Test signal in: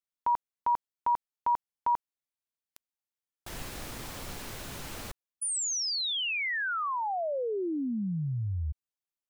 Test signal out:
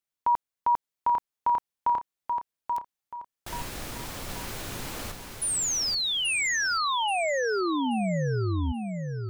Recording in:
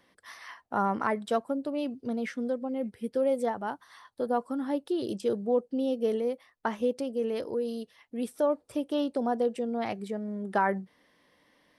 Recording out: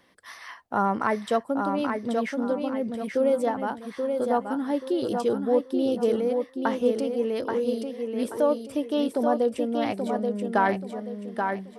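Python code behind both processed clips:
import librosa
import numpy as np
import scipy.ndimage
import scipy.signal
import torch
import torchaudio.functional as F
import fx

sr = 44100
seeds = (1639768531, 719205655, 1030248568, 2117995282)

y = fx.echo_feedback(x, sr, ms=831, feedback_pct=32, wet_db=-5)
y = F.gain(torch.from_numpy(y), 3.5).numpy()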